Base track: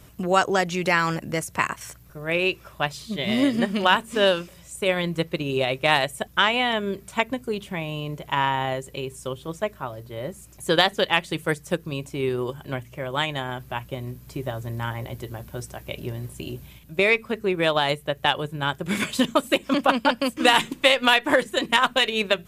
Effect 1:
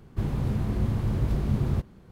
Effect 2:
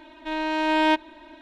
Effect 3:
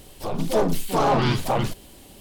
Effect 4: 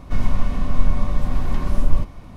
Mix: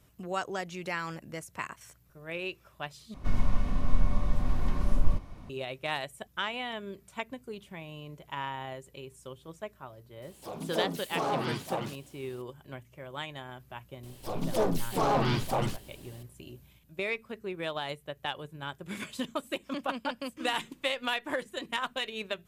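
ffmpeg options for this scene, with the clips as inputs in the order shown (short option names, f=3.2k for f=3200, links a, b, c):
-filter_complex "[3:a]asplit=2[a][b];[0:a]volume=-13.5dB[c];[a]highpass=150[d];[c]asplit=2[e][f];[e]atrim=end=3.144[g];[4:a]atrim=end=2.36,asetpts=PTS-STARTPTS,volume=-7dB[h];[f]atrim=start=5.496[i];[d]atrim=end=2.2,asetpts=PTS-STARTPTS,volume=-10.5dB,afade=t=in:d=0.004:c=hsin,afade=t=out:st=2.196:d=0.004:c=hsin,adelay=10220[j];[b]atrim=end=2.2,asetpts=PTS-STARTPTS,volume=-6.5dB,afade=t=in:d=0.004:c=hsin,afade=t=out:st=2.196:d=0.004:c=hsin,adelay=14030[k];[g][h]acrossfade=d=0.004:c1=hsin:c2=hsin[l];[l][i]acrossfade=d=0.004:c1=hsin:c2=hsin[m];[m][j][k]amix=inputs=3:normalize=0"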